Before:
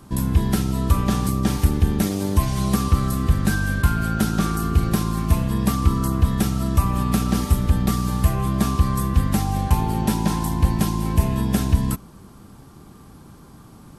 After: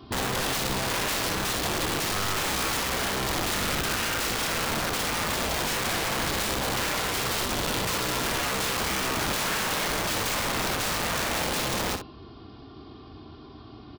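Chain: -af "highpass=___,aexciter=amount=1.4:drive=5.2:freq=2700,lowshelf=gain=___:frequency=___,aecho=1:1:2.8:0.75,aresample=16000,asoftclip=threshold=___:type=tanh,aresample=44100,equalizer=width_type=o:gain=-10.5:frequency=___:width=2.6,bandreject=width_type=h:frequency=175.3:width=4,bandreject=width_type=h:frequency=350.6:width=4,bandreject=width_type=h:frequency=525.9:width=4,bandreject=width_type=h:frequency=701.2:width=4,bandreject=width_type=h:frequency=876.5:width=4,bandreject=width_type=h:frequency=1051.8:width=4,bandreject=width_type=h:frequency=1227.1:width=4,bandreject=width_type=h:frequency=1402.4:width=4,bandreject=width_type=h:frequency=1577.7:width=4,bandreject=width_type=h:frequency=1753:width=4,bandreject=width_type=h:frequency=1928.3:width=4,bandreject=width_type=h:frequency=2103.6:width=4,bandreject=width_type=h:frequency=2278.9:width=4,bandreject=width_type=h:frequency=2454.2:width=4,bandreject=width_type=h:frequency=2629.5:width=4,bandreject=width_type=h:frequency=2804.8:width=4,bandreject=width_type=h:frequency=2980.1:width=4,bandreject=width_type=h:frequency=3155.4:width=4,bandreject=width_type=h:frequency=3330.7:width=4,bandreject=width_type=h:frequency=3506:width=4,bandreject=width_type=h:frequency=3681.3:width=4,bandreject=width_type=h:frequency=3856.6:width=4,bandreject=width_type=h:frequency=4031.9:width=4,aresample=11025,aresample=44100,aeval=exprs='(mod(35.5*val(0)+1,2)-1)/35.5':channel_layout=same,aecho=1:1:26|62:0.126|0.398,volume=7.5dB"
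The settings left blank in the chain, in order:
68, -8.5, 490, -19dB, 1800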